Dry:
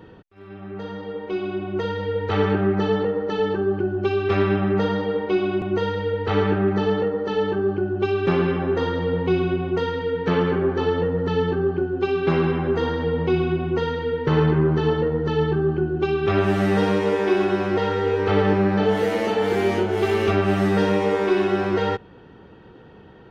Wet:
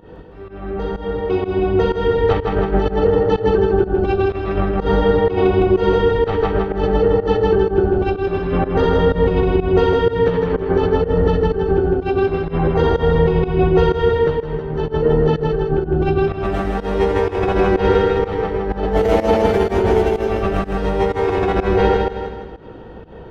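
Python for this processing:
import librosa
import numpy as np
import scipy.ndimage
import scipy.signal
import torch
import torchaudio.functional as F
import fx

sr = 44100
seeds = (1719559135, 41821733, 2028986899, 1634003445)

p1 = fx.octave_divider(x, sr, octaves=2, level_db=-3.0)
p2 = np.clip(10.0 ** (13.0 / 20.0) * p1, -1.0, 1.0) / 10.0 ** (13.0 / 20.0)
p3 = p1 + (p2 * 10.0 ** (-6.5 / 20.0))
p4 = fx.doubler(p3, sr, ms=18.0, db=-10.0)
p5 = fx.over_compress(p4, sr, threshold_db=-18.0, ratio=-0.5)
p6 = fx.peak_eq(p5, sr, hz=590.0, db=7.5, octaves=1.5)
p7 = p6 + fx.echo_feedback(p6, sr, ms=159, feedback_pct=45, wet_db=-3.5, dry=0)
p8 = fx.volume_shaper(p7, sr, bpm=125, per_beat=1, depth_db=-17, release_ms=142.0, shape='fast start')
p9 = fx.low_shelf(p8, sr, hz=190.0, db=4.5)
y = p9 * 10.0 ** (-3.5 / 20.0)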